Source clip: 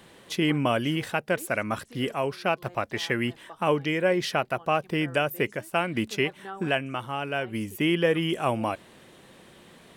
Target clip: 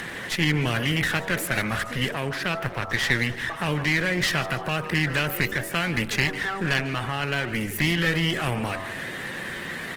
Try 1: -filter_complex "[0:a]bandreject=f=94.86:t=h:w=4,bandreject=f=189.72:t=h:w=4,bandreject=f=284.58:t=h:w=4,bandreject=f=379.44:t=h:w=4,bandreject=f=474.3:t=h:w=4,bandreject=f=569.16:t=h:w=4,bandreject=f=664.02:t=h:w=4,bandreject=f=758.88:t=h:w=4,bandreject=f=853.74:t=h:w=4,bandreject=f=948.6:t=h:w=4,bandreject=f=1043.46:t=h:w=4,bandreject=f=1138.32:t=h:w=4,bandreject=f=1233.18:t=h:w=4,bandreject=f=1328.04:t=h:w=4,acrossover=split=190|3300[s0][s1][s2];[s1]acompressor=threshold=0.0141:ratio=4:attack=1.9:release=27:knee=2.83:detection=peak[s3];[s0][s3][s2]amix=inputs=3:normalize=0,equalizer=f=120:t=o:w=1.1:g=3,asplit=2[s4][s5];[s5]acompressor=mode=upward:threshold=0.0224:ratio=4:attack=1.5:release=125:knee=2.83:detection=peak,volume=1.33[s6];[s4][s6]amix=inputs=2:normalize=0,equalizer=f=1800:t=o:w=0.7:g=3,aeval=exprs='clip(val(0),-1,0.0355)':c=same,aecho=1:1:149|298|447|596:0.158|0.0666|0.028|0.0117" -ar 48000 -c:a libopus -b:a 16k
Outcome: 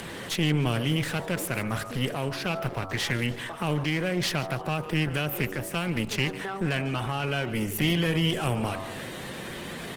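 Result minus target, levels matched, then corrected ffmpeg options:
2 kHz band -4.5 dB
-filter_complex "[0:a]bandreject=f=94.86:t=h:w=4,bandreject=f=189.72:t=h:w=4,bandreject=f=284.58:t=h:w=4,bandreject=f=379.44:t=h:w=4,bandreject=f=474.3:t=h:w=4,bandreject=f=569.16:t=h:w=4,bandreject=f=664.02:t=h:w=4,bandreject=f=758.88:t=h:w=4,bandreject=f=853.74:t=h:w=4,bandreject=f=948.6:t=h:w=4,bandreject=f=1043.46:t=h:w=4,bandreject=f=1138.32:t=h:w=4,bandreject=f=1233.18:t=h:w=4,bandreject=f=1328.04:t=h:w=4,acrossover=split=190|3300[s0][s1][s2];[s1]acompressor=threshold=0.0141:ratio=4:attack=1.9:release=27:knee=2.83:detection=peak[s3];[s0][s3][s2]amix=inputs=3:normalize=0,equalizer=f=120:t=o:w=1.1:g=3,asplit=2[s4][s5];[s5]acompressor=mode=upward:threshold=0.0224:ratio=4:attack=1.5:release=125:knee=2.83:detection=peak,volume=1.33[s6];[s4][s6]amix=inputs=2:normalize=0,equalizer=f=1800:t=o:w=0.7:g=14.5,aeval=exprs='clip(val(0),-1,0.0355)':c=same,aecho=1:1:149|298|447|596:0.158|0.0666|0.028|0.0117" -ar 48000 -c:a libopus -b:a 16k

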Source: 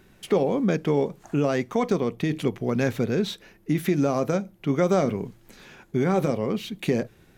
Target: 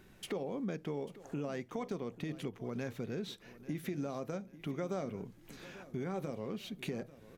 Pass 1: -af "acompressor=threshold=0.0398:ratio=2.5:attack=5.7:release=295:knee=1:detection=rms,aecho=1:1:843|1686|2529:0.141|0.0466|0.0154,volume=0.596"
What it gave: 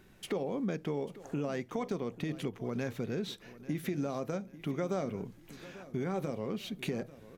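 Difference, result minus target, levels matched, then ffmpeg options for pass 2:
compression: peak gain reduction -4 dB
-af "acompressor=threshold=0.0188:ratio=2.5:attack=5.7:release=295:knee=1:detection=rms,aecho=1:1:843|1686|2529:0.141|0.0466|0.0154,volume=0.596"

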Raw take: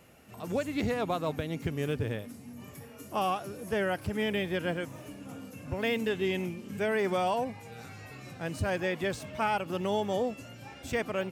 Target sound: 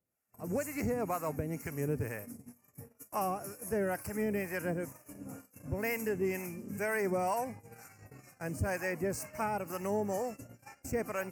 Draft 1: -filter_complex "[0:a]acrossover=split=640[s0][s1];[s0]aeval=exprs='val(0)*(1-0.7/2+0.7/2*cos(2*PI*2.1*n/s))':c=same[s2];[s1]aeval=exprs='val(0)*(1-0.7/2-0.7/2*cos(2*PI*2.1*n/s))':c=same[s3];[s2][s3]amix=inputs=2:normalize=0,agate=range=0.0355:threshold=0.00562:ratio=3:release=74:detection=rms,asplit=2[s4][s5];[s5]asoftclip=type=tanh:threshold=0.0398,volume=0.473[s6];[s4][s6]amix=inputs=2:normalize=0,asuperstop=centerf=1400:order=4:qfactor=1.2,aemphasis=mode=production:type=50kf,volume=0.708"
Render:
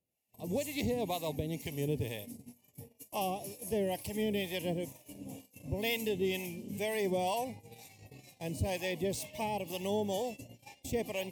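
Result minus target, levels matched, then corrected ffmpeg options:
4 kHz band +13.5 dB
-filter_complex "[0:a]acrossover=split=640[s0][s1];[s0]aeval=exprs='val(0)*(1-0.7/2+0.7/2*cos(2*PI*2.1*n/s))':c=same[s2];[s1]aeval=exprs='val(0)*(1-0.7/2-0.7/2*cos(2*PI*2.1*n/s))':c=same[s3];[s2][s3]amix=inputs=2:normalize=0,agate=range=0.0355:threshold=0.00562:ratio=3:release=74:detection=rms,asplit=2[s4][s5];[s5]asoftclip=type=tanh:threshold=0.0398,volume=0.473[s6];[s4][s6]amix=inputs=2:normalize=0,asuperstop=centerf=3500:order=4:qfactor=1.2,aemphasis=mode=production:type=50kf,volume=0.708"

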